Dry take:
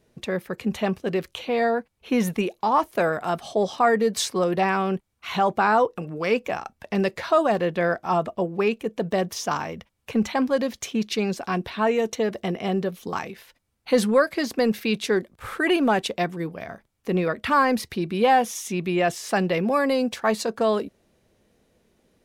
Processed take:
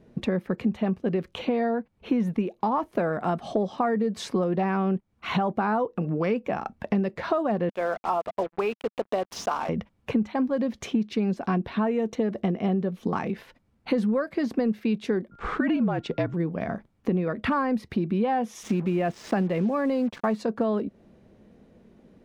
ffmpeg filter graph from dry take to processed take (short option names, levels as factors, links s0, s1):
-filter_complex "[0:a]asettb=1/sr,asplit=3[s0][s1][s2];[s0]atrim=end=7.694[s3];[s1]atrim=start=7.69:end=9.69,asetpts=PTS-STARTPTS,afade=t=in:d=0.004:c=qsin,afade=t=out:st=1.996:d=0.004:c=qsin,highpass=600,equalizer=f=1800:w=3.7:g=-8.5,acrusher=bits=5:mix=0:aa=0.5[s4];[s2]atrim=start=9.686[s5];[s3][s4]acrossfade=d=0.004:c1=hsin:c2=qsin[s6];[s6][s5]acrossfade=d=0.004:c1=qsin:c2=hsin,asettb=1/sr,asplit=3[s7][s8][s9];[s7]atrim=end=15.314[s10];[s8]atrim=start=15.31:end=16.34,asetpts=PTS-STARTPTS,afade=t=in:d=0.004:c=qsin,afade=t=out:st=1.026:d=0.004:c=qsin,lowpass=f=7400:w=0.5412,lowpass=f=7400:w=1.3066,afreqshift=-51,aeval=exprs='val(0)+0.00224*sin(2*PI*1400*n/s)':c=same[s11];[s9]atrim=start=16.336[s12];[s10][s11]acrossfade=d=0.004:c1=hsin:c2=qsin[s13];[s13][s12]acrossfade=d=0.004:c1=qsin:c2=hsin,asettb=1/sr,asplit=3[s14][s15][s16];[s14]atrim=end=18.634[s17];[s15]atrim=start=18.63:end=20.36,asetpts=PTS-STARTPTS,afade=t=in:d=0.004:c=qsin,afade=t=out:st=1.726:d=0.004:c=qsin,lowpass=7300,acrusher=bits=5:mix=0:aa=0.5[s18];[s16]atrim=start=20.356[s19];[s17][s18]acrossfade=d=0.004:c1=hsin:c2=qsin[s20];[s20][s19]acrossfade=d=0.004:c1=qsin:c2=hsin,lowpass=f=1300:p=1,equalizer=f=210:w=1.4:g=7,acompressor=threshold=0.0316:ratio=6,volume=2.24"